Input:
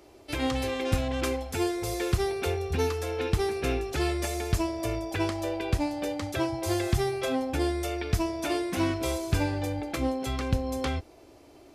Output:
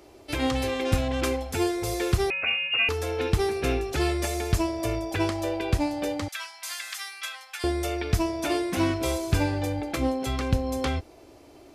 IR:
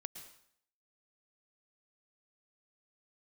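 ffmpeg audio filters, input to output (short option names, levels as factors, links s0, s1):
-filter_complex "[0:a]asettb=1/sr,asplit=3[s0][s1][s2];[s0]atrim=end=2.304[s3];[s1]atrim=start=2.3:end=2.89,asetpts=PTS-STARTPTS,afade=t=in:d=0.004:c=qsin,afade=t=out:st=0.586:d=0.004:c=qsin,lowpass=f=2500:t=q:w=0.5098,lowpass=f=2500:t=q:w=0.6013,lowpass=f=2500:t=q:w=0.9,lowpass=f=2500:t=q:w=2.563,afreqshift=-2900[s4];[s2]atrim=start=2.886[s5];[s3][s4]acrossfade=d=0.004:c1=hsin:c2=qsin[s6];[s6][s5]acrossfade=d=0.004:c1=qsin:c2=hsin,asettb=1/sr,asplit=3[s7][s8][s9];[s7]atrim=end=6.284[s10];[s8]atrim=start=6.28:end=7.64,asetpts=PTS-STARTPTS,afade=t=in:d=0.004:c=qsin,afade=t=out:st=1.356:d=0.004:c=qsin,highpass=f=1300:w=0.5412,highpass=f=1300:w=1.3066[s11];[s9]atrim=start=7.636[s12];[s10][s11]acrossfade=d=0.004:c1=hsin:c2=qsin[s13];[s13][s12]acrossfade=d=0.004:c1=qsin:c2=hsin,volume=1.33"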